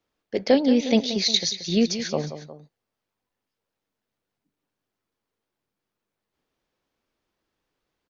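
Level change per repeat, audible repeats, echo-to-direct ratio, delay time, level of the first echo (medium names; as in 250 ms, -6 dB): -5.0 dB, 2, -10.5 dB, 179 ms, -11.5 dB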